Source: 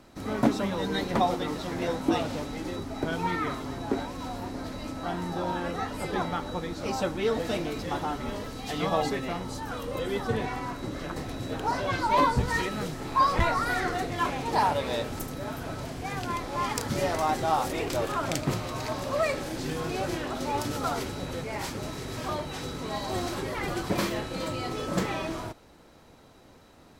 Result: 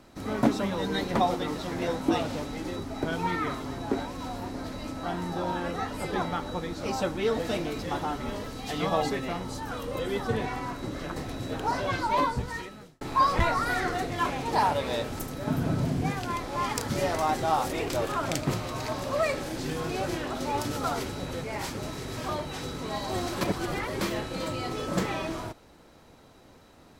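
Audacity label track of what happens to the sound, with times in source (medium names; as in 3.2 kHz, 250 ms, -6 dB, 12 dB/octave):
11.870000	13.010000	fade out
15.470000	16.120000	peaking EQ 170 Hz +14 dB 2 oct
23.410000	24.010000	reverse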